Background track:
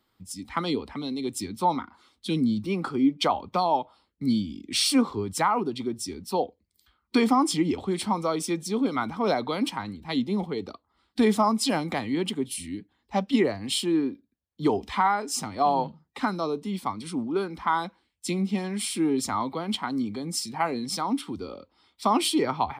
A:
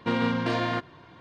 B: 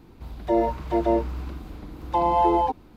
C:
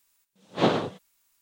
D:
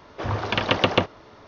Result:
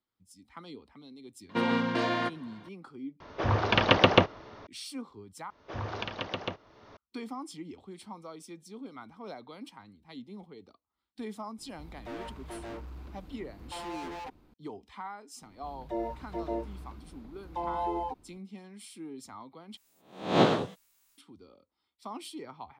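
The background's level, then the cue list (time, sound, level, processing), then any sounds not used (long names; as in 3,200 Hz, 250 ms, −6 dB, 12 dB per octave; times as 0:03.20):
background track −18.5 dB
0:01.49: mix in A −1.5 dB + high-pass filter 160 Hz
0:03.20: overwrite with D + high-shelf EQ 6,100 Hz −6 dB
0:05.50: overwrite with D −16 dB + camcorder AGC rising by 27 dB per second
0:11.58: mix in B −11 dB + gain into a clipping stage and back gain 28.5 dB
0:15.42: mix in B −12.5 dB
0:19.77: overwrite with C −2 dB + peak hold with a rise ahead of every peak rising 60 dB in 0.49 s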